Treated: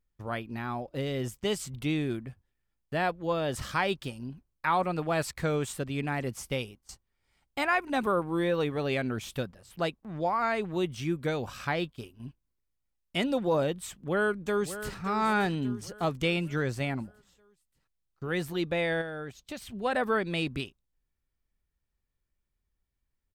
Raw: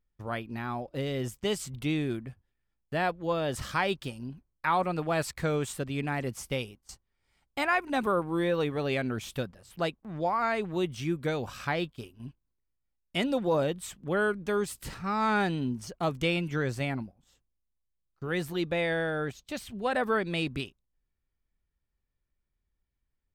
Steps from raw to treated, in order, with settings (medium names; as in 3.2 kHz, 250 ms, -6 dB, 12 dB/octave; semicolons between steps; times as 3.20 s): 13.88–14.97 s: echo throw 580 ms, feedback 50%, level -12 dB; 19.01–19.62 s: compression, threshold -35 dBFS, peak gain reduction 7.5 dB